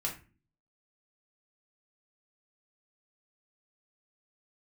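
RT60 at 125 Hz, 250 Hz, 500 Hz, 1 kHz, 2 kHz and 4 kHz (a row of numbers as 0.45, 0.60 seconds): 0.65, 0.65, 0.40, 0.30, 0.35, 0.25 seconds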